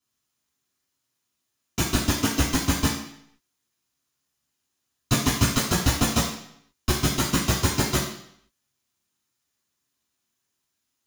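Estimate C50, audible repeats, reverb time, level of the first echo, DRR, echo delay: 4.5 dB, no echo, 0.70 s, no echo, -8.0 dB, no echo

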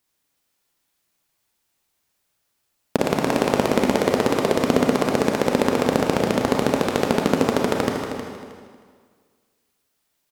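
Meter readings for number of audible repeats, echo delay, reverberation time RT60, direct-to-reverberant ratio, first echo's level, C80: 2, 314 ms, 1.8 s, 0.0 dB, -10.0 dB, 2.5 dB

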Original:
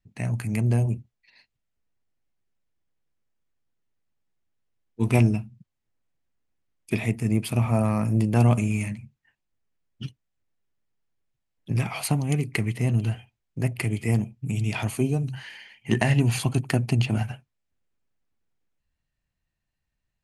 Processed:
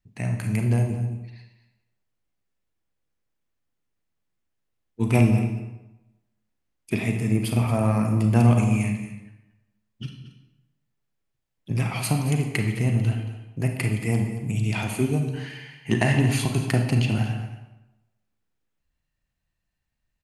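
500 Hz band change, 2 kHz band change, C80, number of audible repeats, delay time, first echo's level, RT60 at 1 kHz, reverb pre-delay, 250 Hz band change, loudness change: +1.5 dB, +2.0 dB, 7.0 dB, 1, 227 ms, -14.0 dB, 0.95 s, 33 ms, +2.0 dB, +1.0 dB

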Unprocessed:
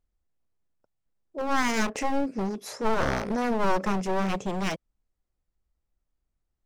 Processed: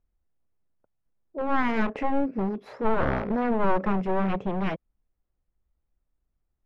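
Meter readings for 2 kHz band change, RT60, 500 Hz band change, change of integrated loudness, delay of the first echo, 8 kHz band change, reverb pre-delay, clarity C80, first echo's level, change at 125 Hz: -1.5 dB, no reverb, +1.0 dB, +1.0 dB, no echo, under -25 dB, no reverb, no reverb, no echo, +2.0 dB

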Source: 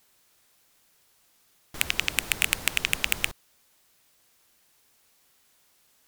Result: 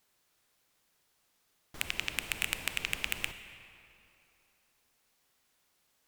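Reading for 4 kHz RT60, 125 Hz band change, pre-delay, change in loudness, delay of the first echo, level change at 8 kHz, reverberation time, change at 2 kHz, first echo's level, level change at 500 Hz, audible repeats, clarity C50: 1.9 s, -7.0 dB, 28 ms, -8.5 dB, no echo, -10.0 dB, 2.9 s, -7.5 dB, no echo, -7.0 dB, no echo, 10.0 dB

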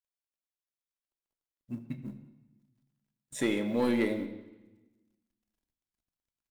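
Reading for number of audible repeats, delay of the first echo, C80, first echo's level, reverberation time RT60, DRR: 1, 182 ms, 12.0 dB, -21.0 dB, 1.0 s, 6.5 dB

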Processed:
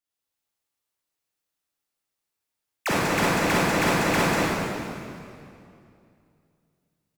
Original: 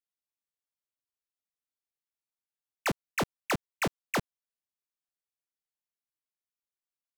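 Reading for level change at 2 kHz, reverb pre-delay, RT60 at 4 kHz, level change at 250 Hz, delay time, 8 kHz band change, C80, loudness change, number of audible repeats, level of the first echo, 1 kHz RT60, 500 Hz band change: +11.0 dB, 32 ms, 2.1 s, +12.0 dB, 193 ms, +10.5 dB, -4.5 dB, +10.0 dB, 1, -5.0 dB, 2.4 s, +12.0 dB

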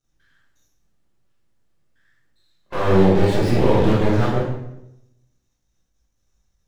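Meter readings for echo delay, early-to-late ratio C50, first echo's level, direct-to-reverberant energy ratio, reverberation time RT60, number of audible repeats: no echo, 1.0 dB, no echo, -7.0 dB, 0.85 s, no echo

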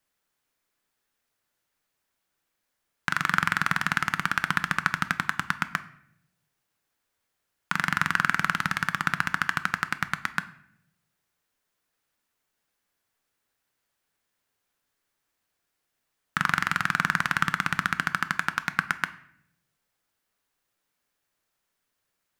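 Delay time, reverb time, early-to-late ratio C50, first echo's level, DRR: no echo, 0.70 s, 16.0 dB, no echo, 11.5 dB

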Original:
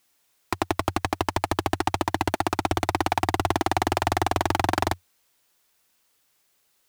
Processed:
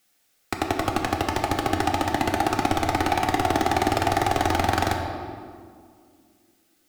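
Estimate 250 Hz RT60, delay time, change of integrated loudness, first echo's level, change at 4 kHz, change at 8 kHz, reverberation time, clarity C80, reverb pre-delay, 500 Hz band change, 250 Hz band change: 2.8 s, no echo, +2.0 dB, no echo, +1.5 dB, +1.0 dB, 2.0 s, 6.0 dB, 4 ms, +2.5 dB, +3.0 dB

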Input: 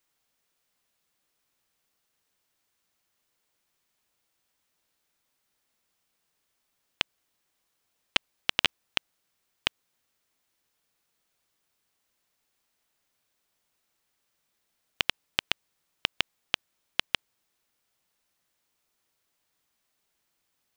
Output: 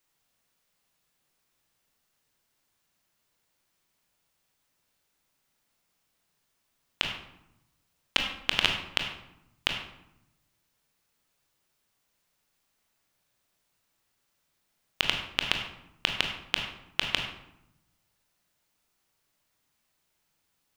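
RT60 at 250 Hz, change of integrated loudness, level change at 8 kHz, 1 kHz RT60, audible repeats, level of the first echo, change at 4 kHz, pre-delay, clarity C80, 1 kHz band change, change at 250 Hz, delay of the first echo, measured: 1.2 s, +1.5 dB, +1.5 dB, 0.85 s, no echo, no echo, +1.5 dB, 22 ms, 7.5 dB, +2.0 dB, +3.5 dB, no echo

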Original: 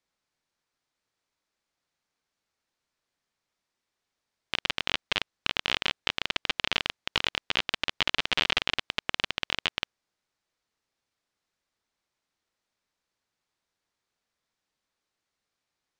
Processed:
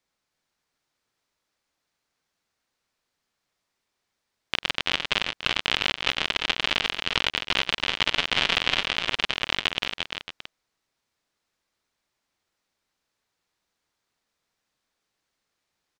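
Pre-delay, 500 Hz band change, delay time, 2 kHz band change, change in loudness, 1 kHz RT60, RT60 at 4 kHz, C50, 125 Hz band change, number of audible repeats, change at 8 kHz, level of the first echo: no reverb, +4.5 dB, 94 ms, +4.5 dB, +4.0 dB, no reverb, no reverb, no reverb, +4.5 dB, 3, +4.5 dB, -20.0 dB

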